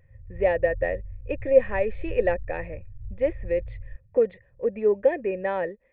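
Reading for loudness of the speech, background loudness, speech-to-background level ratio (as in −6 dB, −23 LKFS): −26.0 LKFS, −41.5 LKFS, 15.5 dB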